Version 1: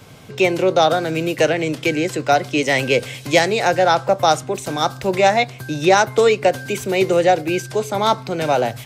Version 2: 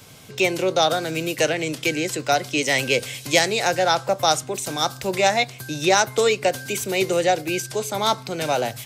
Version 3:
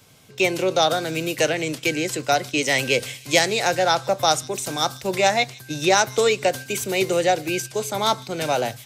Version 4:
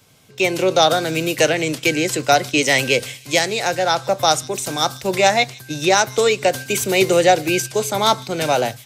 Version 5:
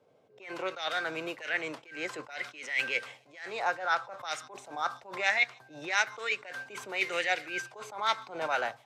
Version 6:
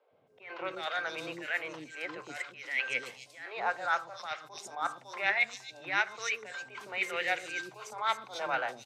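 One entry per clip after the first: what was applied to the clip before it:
high shelf 3200 Hz +11 dB; gain -5.5 dB
gate -31 dBFS, range -7 dB; thin delay 0.154 s, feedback 57%, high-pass 3300 Hz, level -19 dB
AGC; gain -1 dB
auto-wah 520–2100 Hz, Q 2.5, up, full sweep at -11 dBFS; attack slew limiter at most 120 dB/s
three bands offset in time mids, lows, highs 0.11/0.27 s, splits 410/4200 Hz; gain -1 dB

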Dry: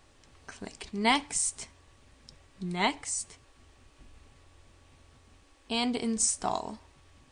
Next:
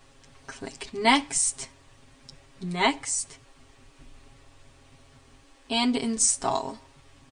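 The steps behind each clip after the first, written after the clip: comb 7.4 ms, depth 94%; gain +2 dB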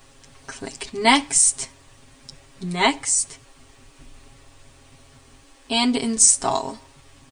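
high shelf 8100 Hz +9 dB; gain +4 dB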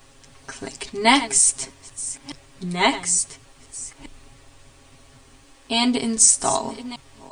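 reverse delay 0.58 s, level -13.5 dB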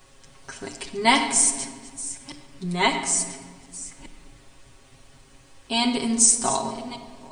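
shoebox room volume 2200 m³, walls mixed, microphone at 1 m; gain -3 dB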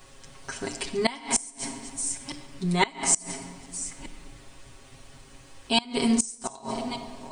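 flipped gate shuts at -12 dBFS, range -24 dB; gain +2.5 dB

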